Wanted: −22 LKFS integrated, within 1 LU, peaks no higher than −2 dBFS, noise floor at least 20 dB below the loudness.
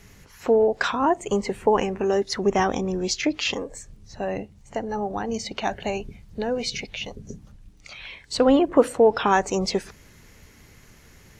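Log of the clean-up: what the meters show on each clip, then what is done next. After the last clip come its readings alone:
crackle rate 26 per second; integrated loudness −24.0 LKFS; sample peak −4.5 dBFS; target loudness −22.0 LKFS
→ click removal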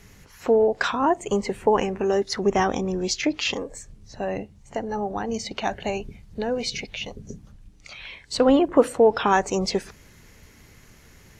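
crackle rate 0 per second; integrated loudness −24.0 LKFS; sample peak −4.5 dBFS; target loudness −22.0 LKFS
→ level +2 dB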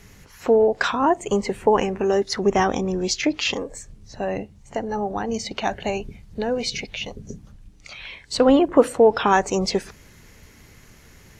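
integrated loudness −22.0 LKFS; sample peak −2.5 dBFS; background noise floor −50 dBFS

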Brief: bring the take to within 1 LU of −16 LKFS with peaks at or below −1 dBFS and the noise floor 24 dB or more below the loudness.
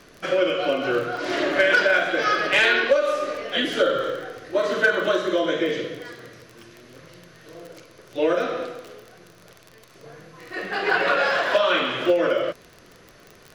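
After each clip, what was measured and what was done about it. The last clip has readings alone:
crackle rate 24 per second; integrated loudness −21.5 LKFS; sample peak −8.5 dBFS; target loudness −16.0 LKFS
→ click removal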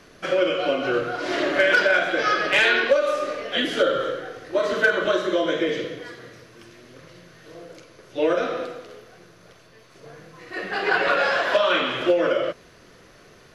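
crackle rate 0.52 per second; integrated loudness −21.5 LKFS; sample peak −7.5 dBFS; target loudness −16.0 LKFS
→ level +5.5 dB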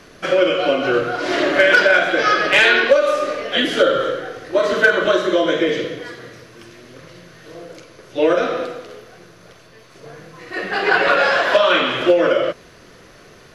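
integrated loudness −16.0 LKFS; sample peak −2.0 dBFS; background noise floor −46 dBFS

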